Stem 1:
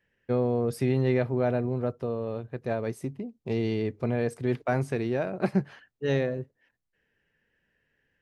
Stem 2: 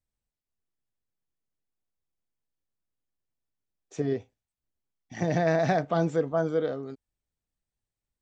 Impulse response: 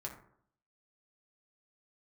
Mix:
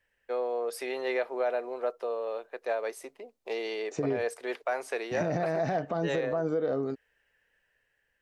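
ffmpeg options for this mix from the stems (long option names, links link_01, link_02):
-filter_complex "[0:a]highpass=frequency=490:width=0.5412,highpass=frequency=490:width=1.3066,dynaudnorm=framelen=160:gausssize=9:maxgain=3.5dB,volume=-0.5dB[link_01];[1:a]equalizer=frequency=550:width=0.43:gain=6,bandreject=frequency=3300:width=6.8,acompressor=threshold=-22dB:ratio=6,volume=1.5dB[link_02];[link_01][link_02]amix=inputs=2:normalize=0,alimiter=limit=-20dB:level=0:latency=1:release=129"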